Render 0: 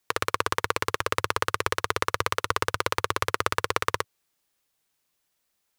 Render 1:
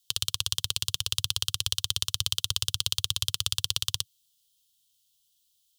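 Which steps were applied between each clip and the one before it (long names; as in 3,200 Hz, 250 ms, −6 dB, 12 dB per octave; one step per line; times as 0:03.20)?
drawn EQ curve 150 Hz 0 dB, 260 Hz −25 dB, 2,200 Hz −21 dB, 3,100 Hz +10 dB, 5,000 Hz +6 dB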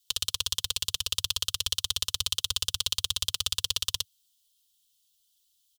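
comb filter 4 ms, depth 96%
level −3 dB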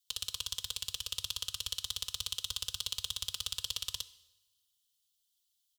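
coupled-rooms reverb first 0.83 s, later 2.3 s, from −21 dB, DRR 13 dB
level −8.5 dB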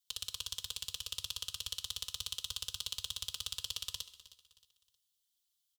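repeating echo 313 ms, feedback 35%, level −17.5 dB
level −3 dB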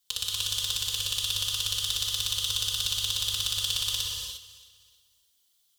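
reverb whose tail is shaped and stops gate 380 ms flat, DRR −1.5 dB
level +8.5 dB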